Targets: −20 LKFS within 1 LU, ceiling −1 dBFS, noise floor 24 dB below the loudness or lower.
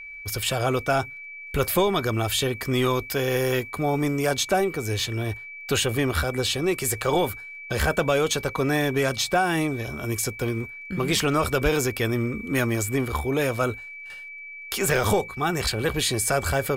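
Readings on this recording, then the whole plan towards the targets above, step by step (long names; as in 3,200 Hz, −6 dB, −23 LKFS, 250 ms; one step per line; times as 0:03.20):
crackle rate 18 per second; interfering tone 2,300 Hz; level of the tone −37 dBFS; integrated loudness −24.5 LKFS; sample peak −10.0 dBFS; target loudness −20.0 LKFS
→ click removal
notch filter 2,300 Hz, Q 30
level +4.5 dB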